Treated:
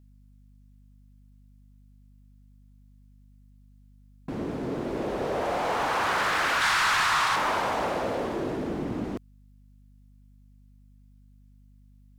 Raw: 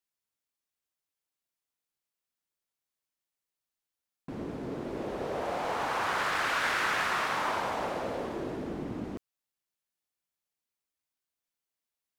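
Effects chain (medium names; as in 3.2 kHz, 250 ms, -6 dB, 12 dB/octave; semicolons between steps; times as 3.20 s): 6.61–7.36 s: graphic EQ 125/250/500/1000/4000/8000 Hz +5/-11/-11/+7/+5/+5 dB; saturation -24 dBFS, distortion -15 dB; hum 50 Hz, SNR 24 dB; trim +6 dB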